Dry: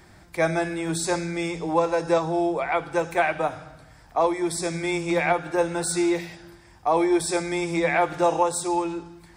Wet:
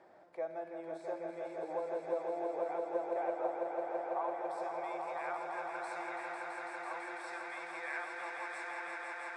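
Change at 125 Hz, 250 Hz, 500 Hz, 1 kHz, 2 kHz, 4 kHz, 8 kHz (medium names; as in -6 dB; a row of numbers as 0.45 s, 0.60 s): under -30 dB, -22.5 dB, -14.0 dB, -13.0 dB, -12.5 dB, -22.0 dB, under -25 dB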